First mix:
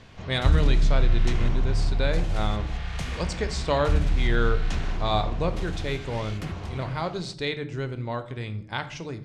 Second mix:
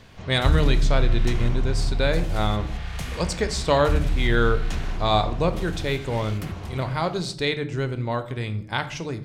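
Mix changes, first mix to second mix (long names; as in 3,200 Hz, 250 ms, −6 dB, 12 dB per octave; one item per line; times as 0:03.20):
speech +4.5 dB
master: remove low-pass filter 7,700 Hz 12 dB per octave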